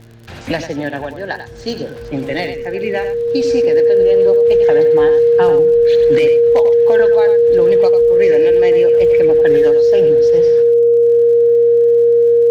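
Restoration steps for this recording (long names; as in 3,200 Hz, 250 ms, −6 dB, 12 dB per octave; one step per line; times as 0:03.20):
click removal
hum removal 114.9 Hz, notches 4
notch filter 470 Hz, Q 30
echo removal 95 ms −9.5 dB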